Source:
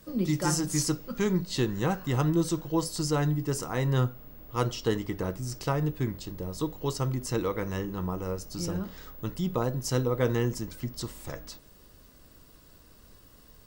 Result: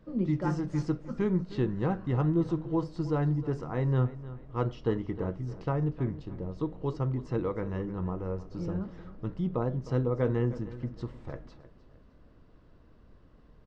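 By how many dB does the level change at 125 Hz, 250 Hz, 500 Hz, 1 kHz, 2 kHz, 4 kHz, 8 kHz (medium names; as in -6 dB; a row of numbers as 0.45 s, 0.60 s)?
-0.5 dB, -1.0 dB, -1.5 dB, -4.0 dB, -7.0 dB, under -15 dB, under -25 dB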